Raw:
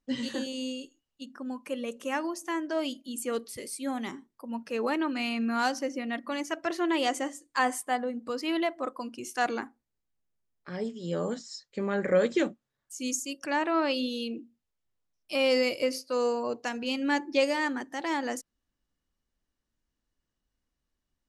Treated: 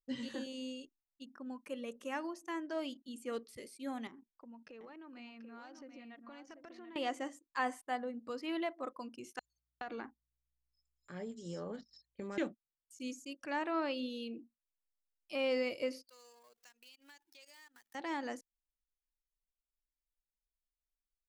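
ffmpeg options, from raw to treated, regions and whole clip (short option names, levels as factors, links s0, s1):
-filter_complex "[0:a]asettb=1/sr,asplit=3[s0][s1][s2];[s0]atrim=end=4.074[s3];[s1]atrim=start=4.07:end=6.96,asetpts=PTS-STARTPTS,afade=t=in:d=0.004:c=qsin,afade=t=out:st=2.886:d=0.004:c=qsin,lowpass=4800,acompressor=threshold=0.00891:ratio=10:attack=3.2:release=140:knee=1:detection=peak,aecho=1:1:737:0.422,atrim=end_sample=127449[s4];[s2]atrim=start=6.956[s5];[s3][s4]acrossfade=d=0.004:c1=hsin:c2=qsin[s6];[s6][s5]acrossfade=d=0.004:c1=qsin:c2=hsin,asettb=1/sr,asplit=3[s7][s8][s9];[s7]atrim=end=9.394[s10];[s8]atrim=start=9.39:end=12.38,asetpts=PTS-STARTPTS,afade=t=in:d=0.004:c=qsin,afade=t=out:st=2.986:d=0.004:c=qsin,acompressor=threshold=0.0355:ratio=12:attack=3.2:release=140:knee=1:detection=peak,acrossover=split=4900[s11][s12];[s11]adelay=420[s13];[s13][s12]amix=inputs=2:normalize=0,atrim=end_sample=131859,aeval=exprs='val(0)+0.000282*(sin(2*PI*60*n/s)+sin(2*PI*2*60*n/s)/2+sin(2*PI*3*60*n/s)/3+sin(2*PI*4*60*n/s)/4+sin(2*PI*5*60*n/s)/5)':c=same[s14];[s9]atrim=start=12.376[s15];[s10][s14]acrossfade=d=0.004:c1=hsin:c2=qsin[s16];[s16][s15]acrossfade=d=0.004:c1=qsin:c2=hsin,asettb=1/sr,asplit=3[s17][s18][s19];[s17]atrim=end=16.094[s20];[s18]atrim=start=16.09:end=17.95,asetpts=PTS-STARTPTS,afade=t=in:d=0.004:c=qsin,afade=t=out:st=1.856:d=0.004:c=qsin,aeval=exprs='val(0)+0.5*0.0133*sgn(val(0))':c=same,aderivative,acompressor=threshold=0.00631:ratio=10:attack=3.2:release=140:knee=1:detection=peak[s21];[s19]atrim=start=17.946[s22];[s20][s21]acrossfade=d=0.004:c1=hsin:c2=qsin[s23];[s23][s22]acrossfade=d=0.004:c1=qsin:c2=hsin,acrossover=split=3500[s24][s25];[s25]acompressor=threshold=0.00501:ratio=4:attack=1:release=60[s26];[s24][s26]amix=inputs=2:normalize=0,anlmdn=0.00251,volume=0.376"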